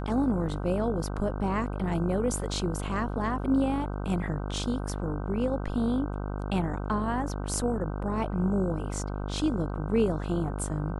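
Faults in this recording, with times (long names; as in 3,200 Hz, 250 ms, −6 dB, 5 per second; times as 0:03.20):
mains buzz 50 Hz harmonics 31 −33 dBFS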